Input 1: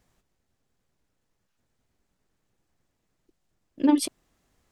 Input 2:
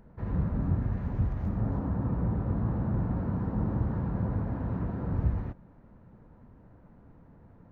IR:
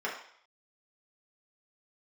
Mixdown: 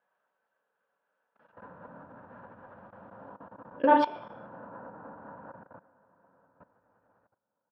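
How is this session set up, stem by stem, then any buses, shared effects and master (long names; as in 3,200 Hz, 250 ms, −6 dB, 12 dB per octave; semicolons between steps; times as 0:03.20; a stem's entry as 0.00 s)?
−3.5 dB, 0.00 s, send −4 dB, no echo send, automatic gain control gain up to 14 dB
0:05.26 −3.5 dB → 0:05.69 −12 dB, 1.35 s, no send, echo send −4 dB, automatic ducking −21 dB, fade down 0.55 s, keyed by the first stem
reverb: on, RT60 0.60 s, pre-delay 3 ms
echo: repeating echo 198 ms, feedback 46%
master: low-shelf EQ 460 Hz −3.5 dB; output level in coarse steps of 20 dB; loudspeaker in its box 350–2,700 Hz, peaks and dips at 380 Hz −7 dB, 550 Hz +8 dB, 950 Hz +7 dB, 1,500 Hz +10 dB, 2,100 Hz −10 dB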